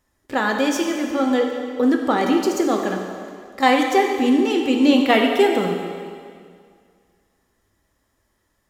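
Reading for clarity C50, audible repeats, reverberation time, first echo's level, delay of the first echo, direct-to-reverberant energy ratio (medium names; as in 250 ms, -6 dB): 3.5 dB, no echo, 2.0 s, no echo, no echo, 2.0 dB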